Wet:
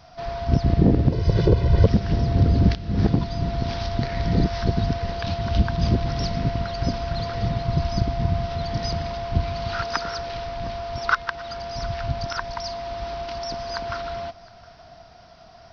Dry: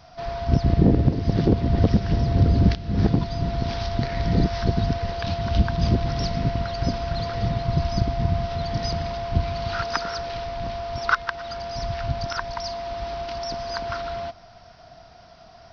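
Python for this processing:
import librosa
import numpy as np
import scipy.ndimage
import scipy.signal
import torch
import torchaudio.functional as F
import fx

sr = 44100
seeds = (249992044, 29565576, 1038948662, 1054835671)

p1 = fx.comb(x, sr, ms=2.0, depth=0.91, at=(1.12, 1.86))
y = p1 + fx.echo_single(p1, sr, ms=714, db=-23.0, dry=0)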